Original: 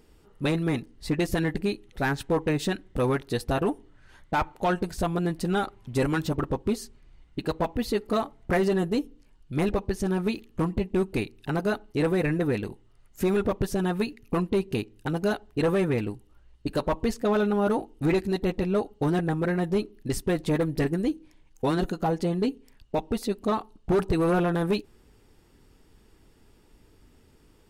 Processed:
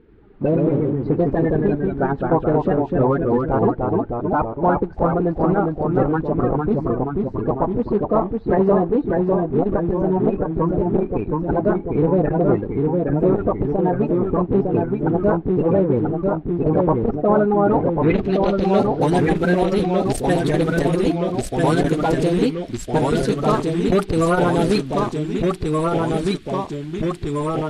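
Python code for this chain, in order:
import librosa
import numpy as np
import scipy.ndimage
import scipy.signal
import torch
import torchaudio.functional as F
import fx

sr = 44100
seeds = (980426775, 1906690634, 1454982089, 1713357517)

p1 = fx.spec_quant(x, sr, step_db=30)
p2 = fx.dmg_noise_band(p1, sr, seeds[0], low_hz=1400.0, high_hz=4400.0, level_db=-62.0)
p3 = np.where(np.abs(p2) >= 10.0 ** (-33.5 / 20.0), p2, 0.0)
p4 = p2 + F.gain(torch.from_numpy(p3), -8.5).numpy()
p5 = fx.filter_sweep_lowpass(p4, sr, from_hz=880.0, to_hz=10000.0, start_s=17.61, end_s=18.96, q=1.1)
p6 = fx.echo_pitch(p5, sr, ms=90, semitones=-1, count=3, db_per_echo=-3.0)
p7 = fx.transformer_sat(p6, sr, knee_hz=220.0)
y = F.gain(torch.from_numpy(p7), 4.5).numpy()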